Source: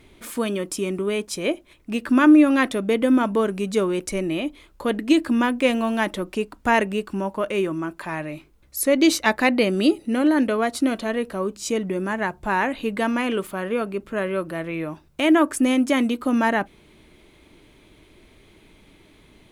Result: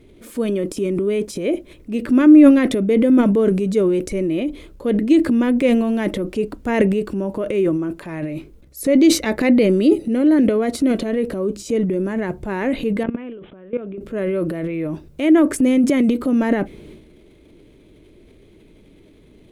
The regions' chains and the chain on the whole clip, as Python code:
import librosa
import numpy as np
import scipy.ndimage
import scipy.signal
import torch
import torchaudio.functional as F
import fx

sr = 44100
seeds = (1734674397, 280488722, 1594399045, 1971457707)

y = fx.chain(x, sr, fx.peak_eq(hz=4300.0, db=-6.0, octaves=0.89),
    fx.level_steps(step_db=22),
    fx.resample_bad(factor=6, down='none', up='filtered'), at=(13.03, 13.98))
y = fx.dynamic_eq(y, sr, hz=2100.0, q=5.4, threshold_db=-45.0, ratio=4.0, max_db=6)
y = fx.transient(y, sr, attack_db=-2, sustain_db=10)
y = fx.low_shelf_res(y, sr, hz=650.0, db=8.5, q=1.5)
y = F.gain(torch.from_numpy(y), -5.5).numpy()